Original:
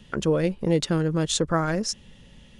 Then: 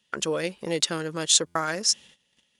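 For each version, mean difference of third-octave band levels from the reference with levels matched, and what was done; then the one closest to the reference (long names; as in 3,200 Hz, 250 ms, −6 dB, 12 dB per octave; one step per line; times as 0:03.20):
6.5 dB: noise gate −45 dBFS, range −18 dB
high-pass filter 670 Hz 6 dB per octave
high-shelf EQ 2,600 Hz +9 dB
buffer that repeats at 0:01.46, samples 512, times 7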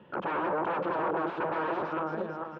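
12.0 dB: feedback delay that plays each chunk backwards 222 ms, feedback 56%, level −7.5 dB
wave folding −28.5 dBFS
loudspeaker in its box 230–2,100 Hz, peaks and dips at 240 Hz −6 dB, 340 Hz +6 dB, 540 Hz +5 dB, 930 Hz +7 dB, 1,400 Hz +3 dB, 2,000 Hz −9 dB
single-tap delay 599 ms −16.5 dB
level +2 dB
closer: first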